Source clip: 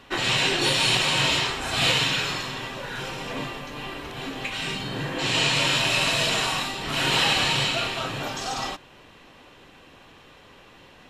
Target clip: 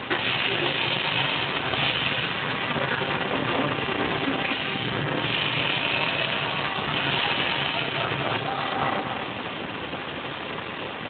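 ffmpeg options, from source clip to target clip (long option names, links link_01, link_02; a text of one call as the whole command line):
ffmpeg -i in.wav -filter_complex "[0:a]asplit=2[link_01][link_02];[link_02]adelay=238,lowpass=frequency=1700:poles=1,volume=-4dB,asplit=2[link_03][link_04];[link_04]adelay=238,lowpass=frequency=1700:poles=1,volume=0.26,asplit=2[link_05][link_06];[link_06]adelay=238,lowpass=frequency=1700:poles=1,volume=0.26,asplit=2[link_07][link_08];[link_08]adelay=238,lowpass=frequency=1700:poles=1,volume=0.26[link_09];[link_03][link_05][link_07][link_09]amix=inputs=4:normalize=0[link_10];[link_01][link_10]amix=inputs=2:normalize=0,acompressor=threshold=-38dB:ratio=3,acrusher=bits=6:dc=4:mix=0:aa=0.000001,alimiter=level_in=31.5dB:limit=-1dB:release=50:level=0:latency=1,volume=-9dB" -ar 8000 -c:a libspeex -b:a 15k out.spx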